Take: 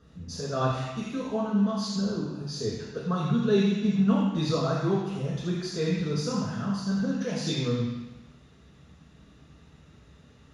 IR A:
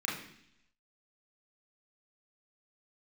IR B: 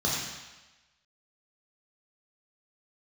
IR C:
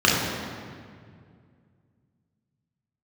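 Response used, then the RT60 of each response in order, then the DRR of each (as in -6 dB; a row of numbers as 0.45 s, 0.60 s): B; 0.70 s, 1.1 s, 2.1 s; -5.5 dB, -5.0 dB, -5.0 dB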